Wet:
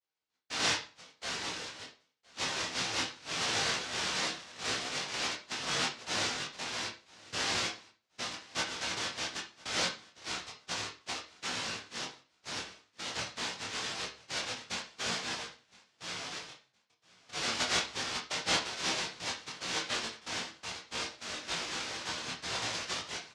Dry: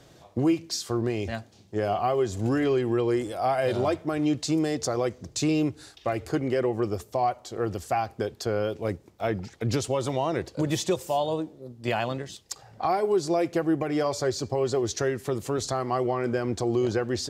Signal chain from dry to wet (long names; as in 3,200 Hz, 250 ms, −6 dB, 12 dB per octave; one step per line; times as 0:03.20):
power curve on the samples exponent 2
high-pass filter 150 Hz 6 dB per octave
comb filter 6.7 ms, depth 60%
brickwall limiter −21.5 dBFS, peak gain reduction 7 dB
low-pass that shuts in the quiet parts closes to 990 Hz, open at −27.5 dBFS
cochlear-implant simulation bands 1
multi-voice chorus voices 6, 0.46 Hz, delay 16 ms, depth 4.9 ms
repeating echo 752 ms, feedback 23%, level −23.5 dB
convolution reverb RT60 0.25 s, pre-delay 6 ms, DRR 3.5 dB
wrong playback speed 45 rpm record played at 33 rpm